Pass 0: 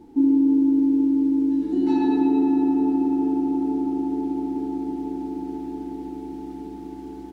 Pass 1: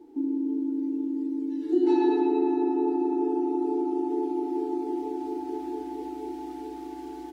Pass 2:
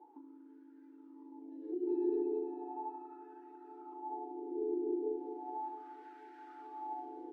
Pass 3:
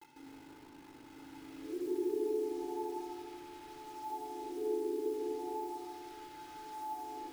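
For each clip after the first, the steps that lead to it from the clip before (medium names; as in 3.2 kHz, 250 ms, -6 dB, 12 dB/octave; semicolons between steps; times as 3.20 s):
resonant low shelf 240 Hz -11 dB, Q 3; in parallel at +3 dB: compression, threshold -26 dBFS, peak gain reduction 13 dB; on the sum: spectral noise reduction 10 dB; trim -4.5 dB
compression 4:1, threshold -33 dBFS, peak gain reduction 13 dB; wah-wah 0.36 Hz 400–1600 Hz, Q 5.2; trim +6 dB
bit crusher 9-bit; simulated room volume 3800 m³, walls mixed, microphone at 4 m; trim -5 dB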